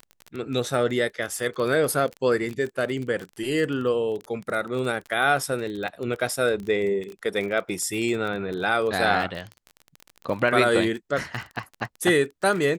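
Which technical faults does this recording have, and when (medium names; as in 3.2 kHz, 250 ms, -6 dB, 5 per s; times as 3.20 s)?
crackle 26 per s -29 dBFS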